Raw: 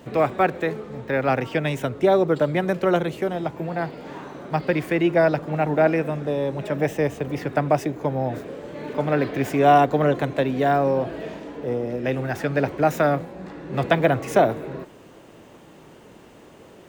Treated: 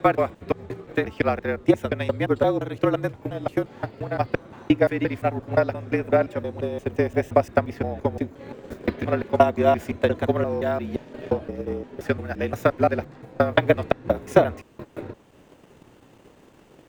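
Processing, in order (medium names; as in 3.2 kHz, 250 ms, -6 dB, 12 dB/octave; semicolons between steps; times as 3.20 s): slices played last to first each 174 ms, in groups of 3; transient shaper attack +10 dB, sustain -2 dB; frequency shift -42 Hz; trim -6 dB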